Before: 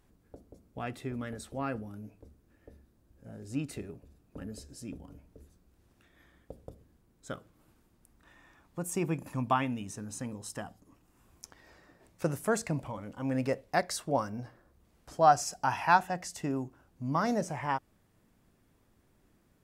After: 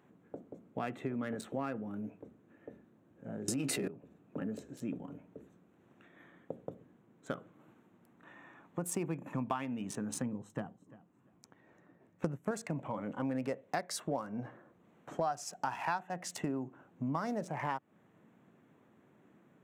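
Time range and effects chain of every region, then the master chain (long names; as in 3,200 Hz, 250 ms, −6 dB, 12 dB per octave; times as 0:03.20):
0:03.48–0:03.88: low-shelf EQ 210 Hz −5 dB + double-tracking delay 15 ms −6 dB + envelope flattener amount 100%
0:10.22–0:12.51: low-shelf EQ 270 Hz +12 dB + repeating echo 344 ms, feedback 21%, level −15.5 dB + expander for the loud parts, over −45 dBFS
whole clip: adaptive Wiener filter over 9 samples; high-pass filter 140 Hz 24 dB per octave; downward compressor 6 to 1, threshold −39 dBFS; level +6 dB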